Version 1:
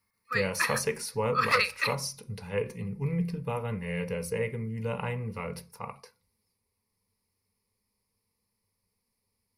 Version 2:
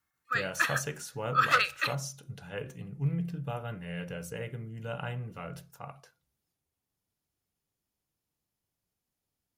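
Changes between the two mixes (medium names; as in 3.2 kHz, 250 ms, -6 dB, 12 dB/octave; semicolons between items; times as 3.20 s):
speech -4.0 dB; master: remove rippled EQ curve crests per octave 0.89, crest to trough 13 dB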